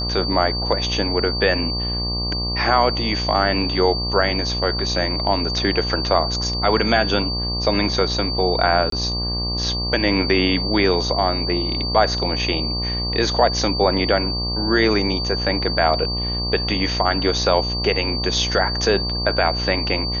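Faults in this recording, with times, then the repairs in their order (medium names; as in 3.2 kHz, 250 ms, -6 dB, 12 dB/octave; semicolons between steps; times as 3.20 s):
buzz 60 Hz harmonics 20 -26 dBFS
whine 4.6 kHz -24 dBFS
8.90–8.92 s: dropout 23 ms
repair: de-hum 60 Hz, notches 20; band-stop 4.6 kHz, Q 30; interpolate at 8.90 s, 23 ms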